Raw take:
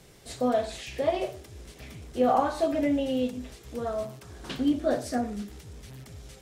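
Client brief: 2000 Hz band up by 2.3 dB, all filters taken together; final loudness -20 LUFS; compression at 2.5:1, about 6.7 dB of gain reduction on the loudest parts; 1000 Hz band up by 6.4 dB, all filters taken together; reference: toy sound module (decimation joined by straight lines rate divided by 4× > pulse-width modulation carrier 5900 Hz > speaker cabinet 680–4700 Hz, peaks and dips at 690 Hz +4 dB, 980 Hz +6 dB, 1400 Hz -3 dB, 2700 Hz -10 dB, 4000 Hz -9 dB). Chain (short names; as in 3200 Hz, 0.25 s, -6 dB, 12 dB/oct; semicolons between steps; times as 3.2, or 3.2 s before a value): bell 1000 Hz +6.5 dB; bell 2000 Hz +4 dB; compressor 2.5:1, threshold -25 dBFS; decimation joined by straight lines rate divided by 4×; pulse-width modulation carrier 5900 Hz; speaker cabinet 680–4700 Hz, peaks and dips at 690 Hz +4 dB, 980 Hz +6 dB, 1400 Hz -3 dB, 2700 Hz -10 dB, 4000 Hz -9 dB; gain +12.5 dB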